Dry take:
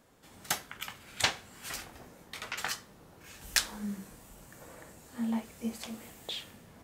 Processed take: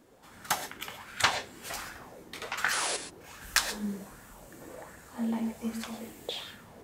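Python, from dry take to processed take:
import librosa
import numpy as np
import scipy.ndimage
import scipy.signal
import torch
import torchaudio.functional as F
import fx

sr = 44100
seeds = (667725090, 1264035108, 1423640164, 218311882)

y = fx.spec_paint(x, sr, seeds[0], shape='noise', start_s=2.72, length_s=0.25, low_hz=270.0, high_hz=11000.0, level_db=-33.0)
y = fx.rev_gated(y, sr, seeds[1], gate_ms=150, shape='rising', drr_db=8.0)
y = fx.bell_lfo(y, sr, hz=1.3, low_hz=310.0, high_hz=1600.0, db=11)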